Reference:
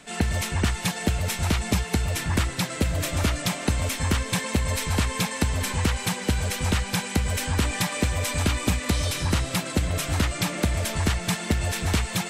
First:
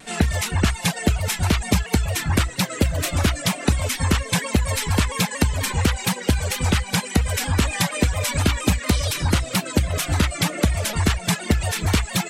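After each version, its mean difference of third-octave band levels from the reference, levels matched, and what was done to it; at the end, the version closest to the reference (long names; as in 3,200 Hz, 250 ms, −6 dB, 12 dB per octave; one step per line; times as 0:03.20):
3.0 dB: reverb reduction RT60 0.85 s
pitch modulation by a square or saw wave saw down 4.3 Hz, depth 100 cents
level +5 dB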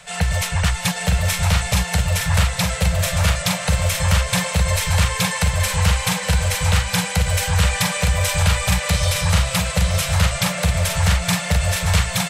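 5.0 dB: elliptic band-stop filter 180–490 Hz, stop band 40 dB
on a send: single-tap delay 913 ms −5 dB
on the sum: level +6 dB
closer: first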